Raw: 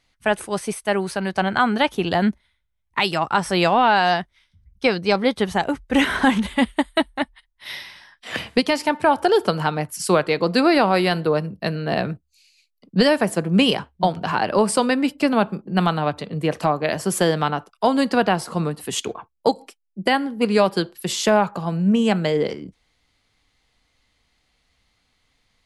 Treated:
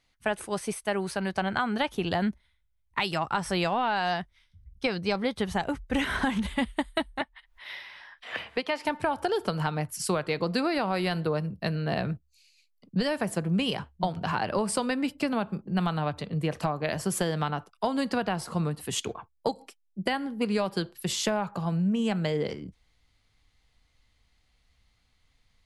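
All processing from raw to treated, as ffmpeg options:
-filter_complex "[0:a]asettb=1/sr,asplit=3[a][b][c];[a]atrim=end=7.214[d];[b]atrim=start=7.21:end=8.85,asetpts=PTS-STARTPTS,afade=t=in:d=0.004:c=qsin,afade=t=out:st=1.636:d=0.004:c=qsin,acrossover=split=360 3500:gain=0.158 1 0.2[e][f][g];[e][f][g]amix=inputs=3:normalize=0,acompressor=mode=upward:threshold=-34dB:ratio=2.5:attack=3.2:release=140:knee=2.83:detection=peak[h];[c]atrim=start=8.846[i];[d][h]acrossfade=d=0.004:c1=hsin:c2=qsin[j];[j][i]acrossfade=d=0.004:c1=qsin:c2=hsin,asubboost=boost=2:cutoff=170,acompressor=threshold=-18dB:ratio=6,volume=-5dB"

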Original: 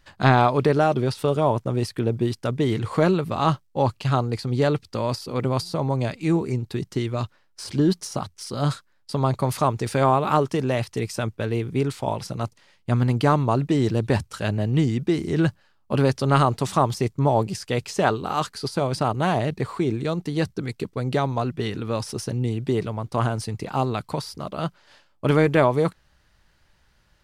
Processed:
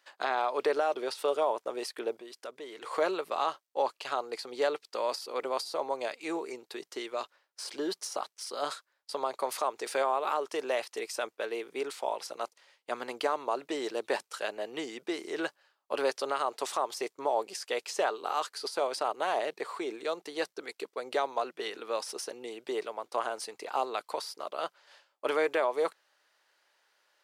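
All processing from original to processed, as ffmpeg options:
-filter_complex "[0:a]asettb=1/sr,asplit=3[a][b][c];[a]atrim=end=2.164[d];[b]atrim=start=2.16:end=2.82,asetpts=PTS-STARTPTS,afade=t=in:d=0.004:c=qsin,afade=t=out:st=0.656:d=0.004:c=qsin,bandreject=f=850:w=12,acompressor=threshold=-32dB:ratio=3:attack=3.2:release=140:knee=1:detection=peak[e];[c]atrim=start=2.816[f];[d][e]acrossfade=d=0.004:c1=hsin:c2=qsin[g];[g][f]acrossfade=d=0.004:c1=qsin:c2=hsin,highpass=f=430:w=0.5412,highpass=f=430:w=1.3066,alimiter=limit=-13.5dB:level=0:latency=1:release=170,volume=-4dB"

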